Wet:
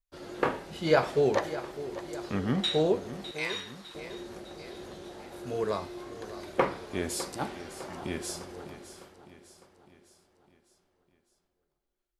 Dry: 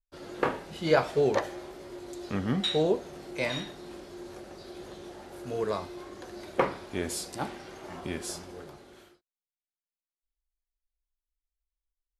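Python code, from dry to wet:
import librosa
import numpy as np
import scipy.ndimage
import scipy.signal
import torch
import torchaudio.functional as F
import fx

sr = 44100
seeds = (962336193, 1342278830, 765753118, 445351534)

y = fx.steep_highpass(x, sr, hz=900.0, slope=48, at=(3.31, 3.95))
y = fx.echo_feedback(y, sr, ms=605, feedback_pct=52, wet_db=-14)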